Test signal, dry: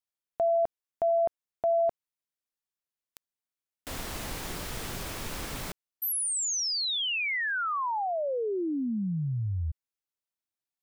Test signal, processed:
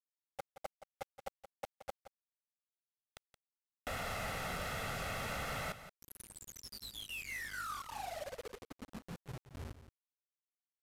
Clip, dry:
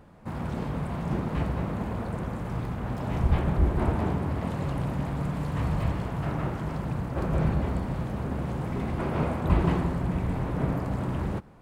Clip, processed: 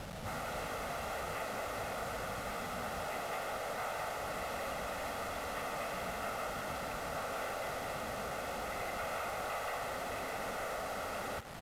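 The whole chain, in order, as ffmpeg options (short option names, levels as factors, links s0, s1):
-filter_complex "[0:a]afftfilt=real='re*lt(hypot(re,im),0.141)':imag='im*lt(hypot(re,im),0.141)':win_size=1024:overlap=0.75,aemphasis=mode=reproduction:type=75fm,acrossover=split=2800[s0][s1];[s1]acompressor=threshold=0.00141:ratio=4:attack=1:release=60[s2];[s0][s2]amix=inputs=2:normalize=0,lowshelf=f=110:g=-7.5,aecho=1:1:1.5:0.74,acrossover=split=1200|2400[s3][s4][s5];[s3]acompressor=threshold=0.00398:ratio=4[s6];[s4]acompressor=threshold=0.00316:ratio=3[s7];[s5]acompressor=threshold=0.002:ratio=10[s8];[s6][s7][s8]amix=inputs=3:normalize=0,acrusher=bits=3:mode=log:mix=0:aa=0.000001,asoftclip=type=tanh:threshold=0.0106,aeval=exprs='val(0)+0.000282*(sin(2*PI*50*n/s)+sin(2*PI*2*50*n/s)/2+sin(2*PI*3*50*n/s)/3+sin(2*PI*4*50*n/s)/4+sin(2*PI*5*50*n/s)/5)':c=same,acrusher=bits=8:mix=0:aa=0.000001,asplit=2[s9][s10];[s10]aecho=0:1:173:0.237[s11];[s9][s11]amix=inputs=2:normalize=0,aresample=32000,aresample=44100,volume=2.37"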